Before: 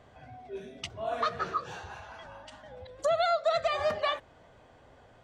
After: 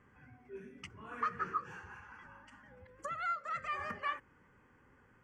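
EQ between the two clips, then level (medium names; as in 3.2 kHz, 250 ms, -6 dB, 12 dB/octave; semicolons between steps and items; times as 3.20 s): tone controls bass -6 dB, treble -6 dB; peaking EQ 200 Hz +5.5 dB 0.89 oct; static phaser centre 1.6 kHz, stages 4; -3.0 dB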